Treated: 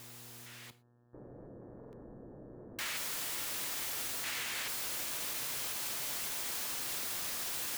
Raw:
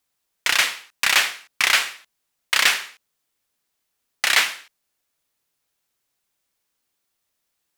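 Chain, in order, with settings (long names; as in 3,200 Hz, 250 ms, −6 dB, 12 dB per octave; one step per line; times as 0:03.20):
sign of each sample alone
echo that builds up and dies away 142 ms, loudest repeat 5, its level −18 dB
noise gate with hold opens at −21 dBFS
0:00.70–0:02.79: inverse Chebyshev low-pass filter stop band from 2,800 Hz, stop band 80 dB
hum with harmonics 120 Hz, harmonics 15, −50 dBFS −8 dB per octave
low-shelf EQ 130 Hz −7 dB
output level in coarse steps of 17 dB
reverb whose tail is shaped and stops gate 140 ms falling, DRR 11.5 dB
brickwall limiter −31.5 dBFS, peak gain reduction 6.5 dB
buffer that repeats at 0:01.79, samples 2,048, times 2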